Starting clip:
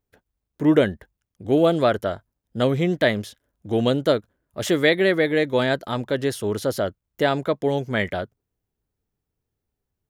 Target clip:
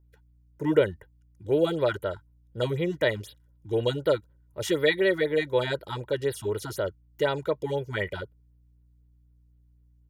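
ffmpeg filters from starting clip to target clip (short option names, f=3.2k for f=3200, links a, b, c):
-af "aeval=exprs='val(0)+0.00178*(sin(2*PI*60*n/s)+sin(2*PI*2*60*n/s)/2+sin(2*PI*3*60*n/s)/3+sin(2*PI*4*60*n/s)/4+sin(2*PI*5*60*n/s)/5)':c=same,aecho=1:1:2.1:0.72,afftfilt=real='re*(1-between(b*sr/1024,450*pow(7500/450,0.5+0.5*sin(2*PI*4*pts/sr))/1.41,450*pow(7500/450,0.5+0.5*sin(2*PI*4*pts/sr))*1.41))':imag='im*(1-between(b*sr/1024,450*pow(7500/450,0.5+0.5*sin(2*PI*4*pts/sr))/1.41,450*pow(7500/450,0.5+0.5*sin(2*PI*4*pts/sr))*1.41))':win_size=1024:overlap=0.75,volume=-6.5dB"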